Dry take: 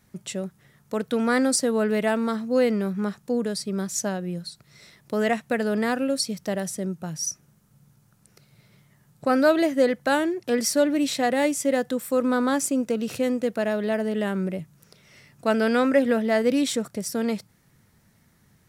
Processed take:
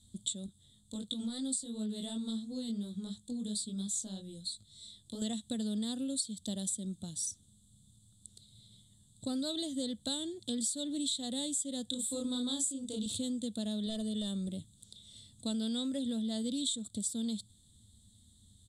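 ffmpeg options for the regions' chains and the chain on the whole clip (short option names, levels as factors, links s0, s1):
-filter_complex "[0:a]asettb=1/sr,asplit=3[s0][s1][s2];[s0]atrim=end=0.464[s3];[s1]atrim=start=0.46:end=5.22,asetpts=PTS-STARTPTS,afade=t=in:d=0.004:c=qsin,afade=t=out:st=4.756:d=0.004:c=qsin,acompressor=threshold=0.0631:ratio=3:attack=3.2:release=140:knee=1:detection=peak,flanger=delay=18.5:depth=3.6:speed=2.9[s4];[s2]atrim=start=5.216[s5];[s3][s4]acrossfade=d=0.004:c1=hsin:c2=qsin[s6];[s6][s5]acrossfade=d=0.004:c1=qsin:c2=hsin,asettb=1/sr,asplit=3[s7][s8][s9];[s7]atrim=end=11.904[s10];[s8]atrim=start=11.9:end=13.06,asetpts=PTS-STARTPTS,afade=t=in:d=0.004:c=qsin,afade=t=out:st=1.156:d=0.004:c=qsin,bandreject=f=230:w=6.9,asplit=2[s11][s12];[s12]adelay=33,volume=0.708[s13];[s11][s13]amix=inputs=2:normalize=0,atrim=end_sample=51156[s14];[s9]atrim=start=13.056[s15];[s10][s14]acrossfade=d=0.004:c1=hsin:c2=qsin[s16];[s16][s15]acrossfade=d=0.004:c1=qsin:c2=hsin,asettb=1/sr,asplit=3[s17][s18][s19];[s17]atrim=end=13.864[s20];[s18]atrim=start=13.86:end=14.48,asetpts=PTS-STARTPTS,afade=t=in:d=0.004:c=qsin,afade=t=out:st=0.616:d=0.004:c=qsin,aecho=1:1:1.7:0.53,atrim=end_sample=27342,asoftclip=type=hard:threshold=0.1[s21];[s19]atrim=start=14.476[s22];[s20][s21]acrossfade=d=0.004:c1=hsin:c2=qsin[s23];[s23][s22]acrossfade=d=0.004:c1=qsin:c2=hsin,firequalizer=gain_entry='entry(100,0);entry(150,-20);entry(210,-5);entry(380,-19);entry(1500,-30);entry(2500,-29);entry(3500,9);entry(5500,-16);entry(7800,8);entry(14000,-24)':delay=0.05:min_phase=1,acompressor=threshold=0.0141:ratio=4,volume=1.5"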